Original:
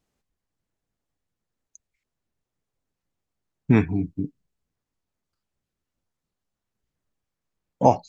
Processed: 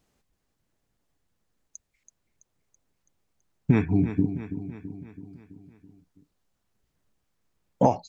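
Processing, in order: compressor 10:1, threshold -22 dBFS, peak gain reduction 13 dB; feedback echo 0.33 s, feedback 57%, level -11 dB; gain +6 dB

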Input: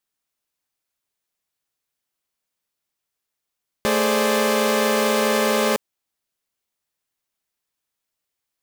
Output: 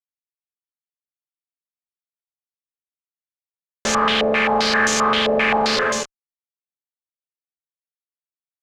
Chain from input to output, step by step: non-linear reverb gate 0.32 s falling, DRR 3 dB; fuzz box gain 42 dB, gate -42 dBFS; stepped low-pass 7.6 Hz 590–6600 Hz; gain -7 dB

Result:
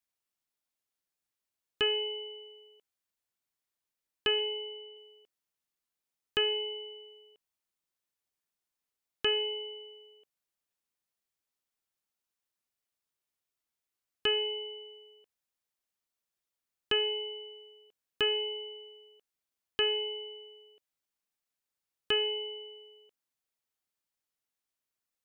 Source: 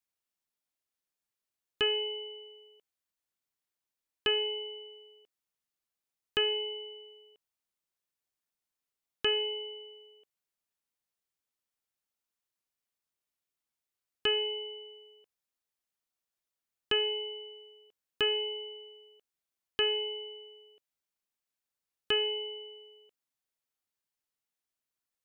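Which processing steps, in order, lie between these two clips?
4.39–4.97 LPF 3900 Hz 24 dB/oct

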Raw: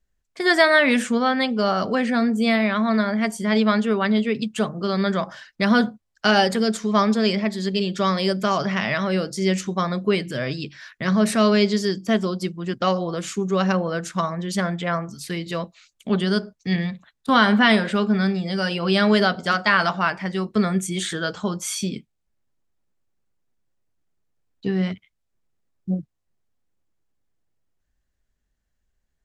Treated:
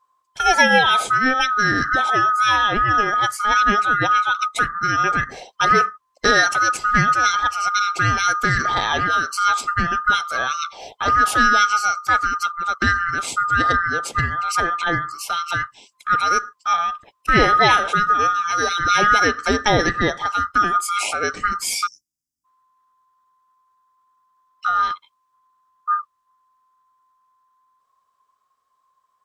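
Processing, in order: band-swap scrambler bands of 1000 Hz; in parallel at -2 dB: compressor, threshold -25 dBFS, peak gain reduction 13.5 dB; on the sum: spectral delete 21.87–22.45, 330–4700 Hz

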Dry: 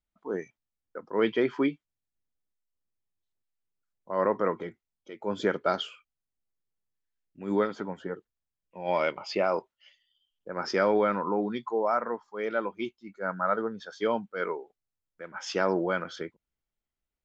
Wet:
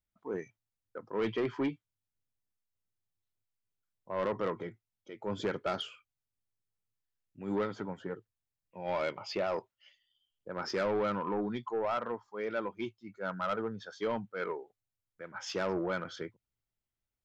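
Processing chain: bell 110 Hz +12.5 dB 0.52 oct; soft clip -22 dBFS, distortion -12 dB; gain -3.5 dB

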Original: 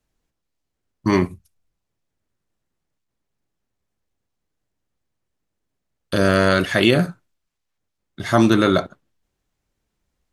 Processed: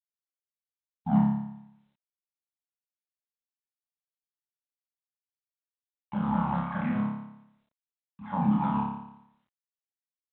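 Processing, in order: repeated pitch sweeps -8 st, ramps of 0.192 s; expander -41 dBFS; limiter -6.5 dBFS, peak gain reduction 4.5 dB; vibrato 1.1 Hz 23 cents; double band-pass 410 Hz, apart 2.1 oct; flutter echo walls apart 4.9 m, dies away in 0.8 s; reverb, pre-delay 3 ms, DRR 10.5 dB; gain -1.5 dB; G.726 40 kbps 8000 Hz

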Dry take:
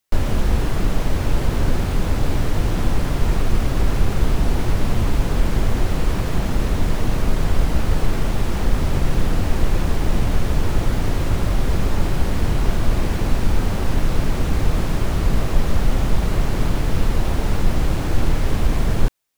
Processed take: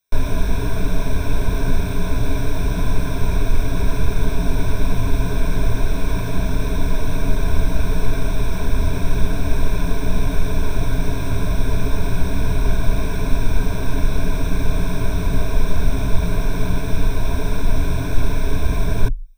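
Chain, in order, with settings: ripple EQ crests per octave 1.6, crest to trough 15 dB; gain -3.5 dB

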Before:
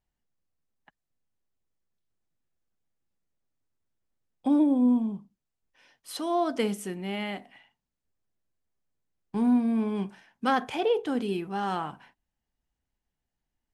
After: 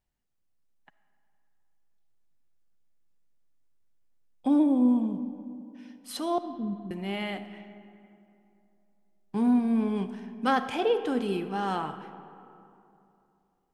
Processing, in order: 6.38–6.91 inverse Chebyshev low-pass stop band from 1100 Hz, stop band 70 dB; digital reverb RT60 2.9 s, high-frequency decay 0.5×, pre-delay 15 ms, DRR 11 dB

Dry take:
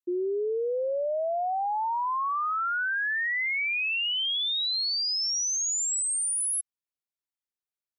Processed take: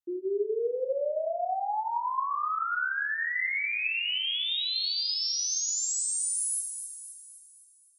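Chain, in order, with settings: split-band echo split 2500 Hz, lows 88 ms, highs 0.259 s, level -8.5 dB; non-linear reverb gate 0.12 s flat, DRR 4 dB; gain -4 dB

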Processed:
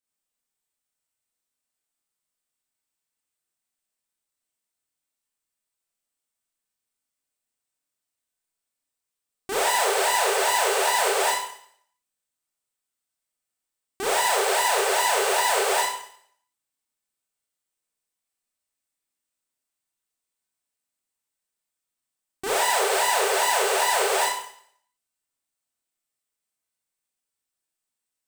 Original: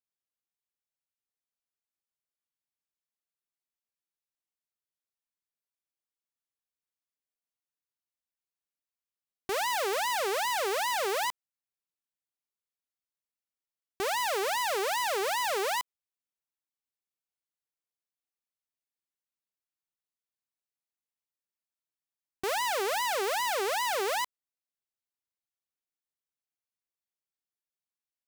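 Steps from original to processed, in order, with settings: bell 8300 Hz +9.5 dB 0.28 oct; Schroeder reverb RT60 0.62 s, combs from 25 ms, DRR -6.5 dB

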